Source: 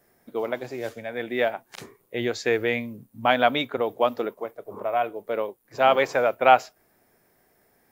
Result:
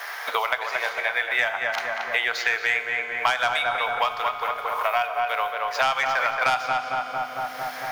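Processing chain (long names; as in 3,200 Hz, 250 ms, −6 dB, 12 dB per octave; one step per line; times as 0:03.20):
running median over 5 samples
high-pass filter 940 Hz 24 dB per octave
high-shelf EQ 7,000 Hz −7.5 dB
notch filter 7,700 Hz, Q 5.2
soft clipping −19 dBFS, distortion −11 dB
feedback echo with a low-pass in the loop 226 ms, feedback 51%, low-pass 1,600 Hz, level −3.5 dB
on a send at −9 dB: convolution reverb RT60 1.4 s, pre-delay 3 ms
on the sum: multiband upward and downward compressor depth 100%
level +7.5 dB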